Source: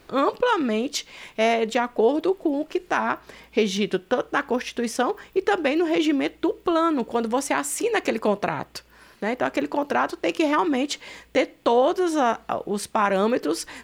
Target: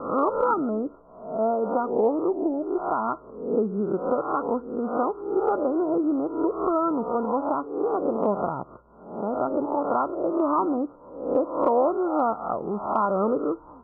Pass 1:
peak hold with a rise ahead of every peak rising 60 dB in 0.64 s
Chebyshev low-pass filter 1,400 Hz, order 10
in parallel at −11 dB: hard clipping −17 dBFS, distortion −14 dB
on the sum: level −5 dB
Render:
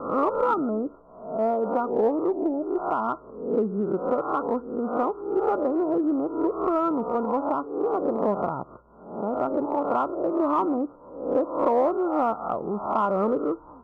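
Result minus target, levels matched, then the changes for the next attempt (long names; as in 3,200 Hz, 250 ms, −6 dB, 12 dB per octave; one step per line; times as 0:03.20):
hard clipping: distortion +19 dB
change: hard clipping −10.5 dBFS, distortion −33 dB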